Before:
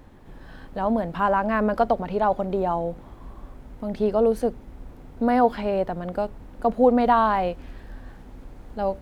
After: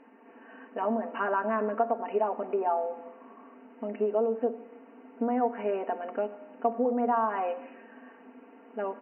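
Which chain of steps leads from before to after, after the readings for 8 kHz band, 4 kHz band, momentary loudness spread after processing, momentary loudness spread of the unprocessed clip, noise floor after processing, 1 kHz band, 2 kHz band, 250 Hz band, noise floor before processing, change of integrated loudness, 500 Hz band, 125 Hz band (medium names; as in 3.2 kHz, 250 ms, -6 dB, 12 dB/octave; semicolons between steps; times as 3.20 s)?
no reading, under -10 dB, 15 LU, 15 LU, -54 dBFS, -7.0 dB, -6.5 dB, -8.5 dB, -45 dBFS, -7.0 dB, -6.0 dB, under -15 dB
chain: low-pass that closes with the level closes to 2 kHz, closed at -19 dBFS; comb 4.4 ms, depth 86%; compression 10:1, threshold -18 dBFS, peak gain reduction 10.5 dB; brick-wall FIR band-pass 220–3000 Hz; gated-style reverb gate 360 ms falling, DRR 11 dB; trim -4 dB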